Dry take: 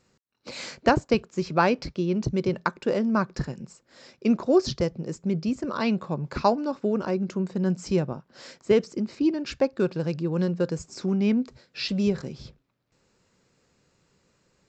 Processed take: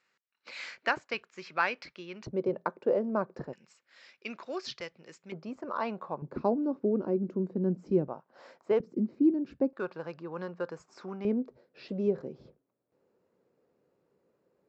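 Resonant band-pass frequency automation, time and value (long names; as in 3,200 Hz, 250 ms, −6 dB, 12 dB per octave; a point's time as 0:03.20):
resonant band-pass, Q 1.4
2,000 Hz
from 0:02.27 550 Hz
from 0:03.53 2,300 Hz
from 0:05.32 890 Hz
from 0:06.22 320 Hz
from 0:08.08 800 Hz
from 0:08.80 260 Hz
from 0:09.73 1,100 Hz
from 0:11.25 460 Hz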